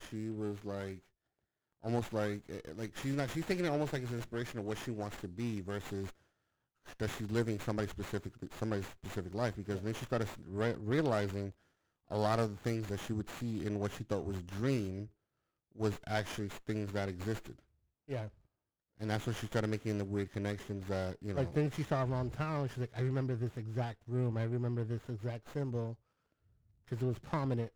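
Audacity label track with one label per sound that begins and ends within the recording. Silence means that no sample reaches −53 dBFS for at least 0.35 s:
1.820000	6.120000	sound
6.860000	11.510000	sound
12.110000	15.080000	sound
15.750000	17.590000	sound
18.080000	18.300000	sound
18.990000	25.950000	sound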